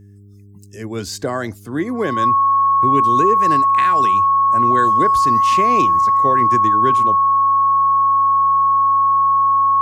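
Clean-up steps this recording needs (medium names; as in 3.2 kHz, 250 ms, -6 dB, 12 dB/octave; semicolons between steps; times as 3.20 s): de-hum 100.7 Hz, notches 4; band-stop 1.1 kHz, Q 30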